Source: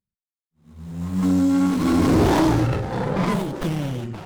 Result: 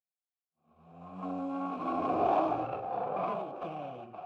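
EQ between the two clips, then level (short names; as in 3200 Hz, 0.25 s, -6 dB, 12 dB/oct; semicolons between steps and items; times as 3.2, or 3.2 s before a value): vowel filter a; high shelf 3200 Hz -12 dB; +3.5 dB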